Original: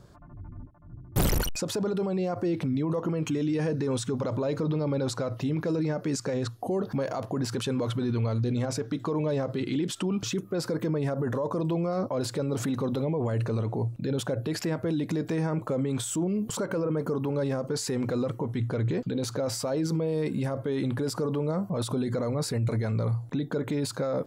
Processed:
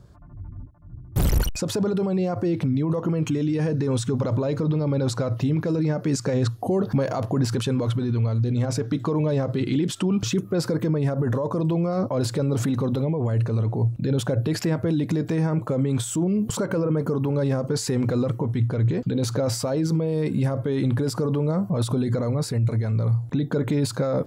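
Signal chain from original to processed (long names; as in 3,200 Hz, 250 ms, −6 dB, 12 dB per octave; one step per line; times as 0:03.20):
parametric band 63 Hz +9.5 dB 2.6 octaves
speech leveller 0.5 s
level +2 dB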